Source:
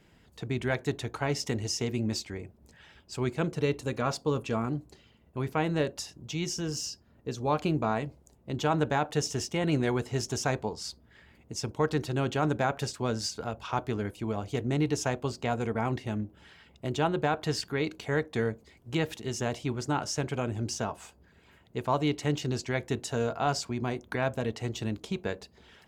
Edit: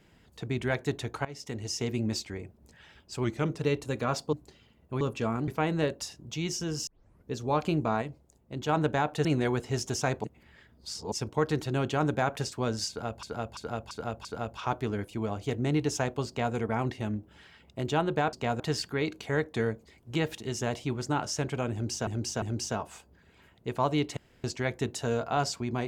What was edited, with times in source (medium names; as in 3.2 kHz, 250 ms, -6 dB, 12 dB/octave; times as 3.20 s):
1.25–1.88 s: fade in, from -19 dB
3.24–3.57 s: speed 92%
4.30–4.77 s: move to 5.45 s
6.84 s: tape start 0.45 s
7.99–8.66 s: gain -3.5 dB
9.22–9.67 s: delete
10.66–11.54 s: reverse
13.31–13.65 s: loop, 5 plays
15.34–15.61 s: copy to 17.39 s
20.51–20.86 s: loop, 3 plays
22.26–22.53 s: room tone